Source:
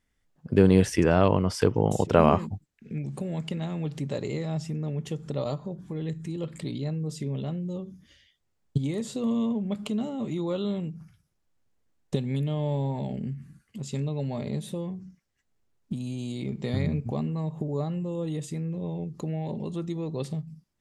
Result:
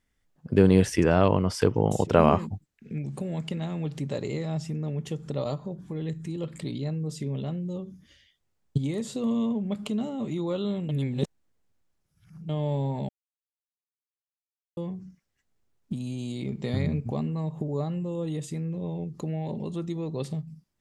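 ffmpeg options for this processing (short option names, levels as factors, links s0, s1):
-filter_complex "[0:a]asplit=5[s0][s1][s2][s3][s4];[s0]atrim=end=10.892[s5];[s1]atrim=start=10.888:end=12.492,asetpts=PTS-STARTPTS,areverse[s6];[s2]atrim=start=12.488:end=13.09,asetpts=PTS-STARTPTS,afade=t=out:st=0.598:d=0.004:c=hsin[s7];[s3]atrim=start=13.09:end=14.77,asetpts=PTS-STARTPTS,volume=0[s8];[s4]atrim=start=14.77,asetpts=PTS-STARTPTS,afade=t=in:d=0.004:c=hsin[s9];[s5][s6]acrossfade=d=0.004:c1=hsin:c2=hsin[s10];[s7][s8][s9]concat=n=3:v=0:a=1[s11];[s10][s11]acrossfade=d=0.004:c1=hsin:c2=hsin"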